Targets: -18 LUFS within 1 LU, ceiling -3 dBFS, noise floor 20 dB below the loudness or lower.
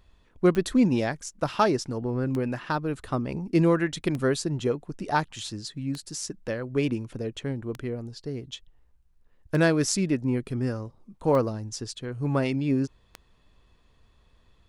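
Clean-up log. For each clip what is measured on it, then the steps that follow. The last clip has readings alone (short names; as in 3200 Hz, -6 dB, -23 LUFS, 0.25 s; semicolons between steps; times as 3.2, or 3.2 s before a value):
clicks 8; loudness -27.5 LUFS; peak -9.0 dBFS; loudness target -18.0 LUFS
-> de-click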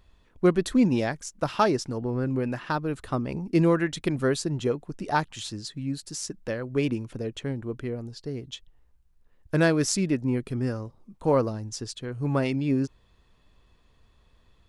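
clicks 0; loudness -27.5 LUFS; peak -9.0 dBFS; loudness target -18.0 LUFS
-> gain +9.5 dB; limiter -3 dBFS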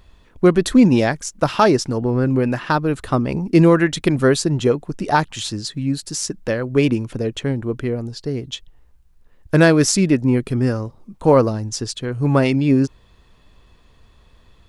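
loudness -18.5 LUFS; peak -3.0 dBFS; noise floor -53 dBFS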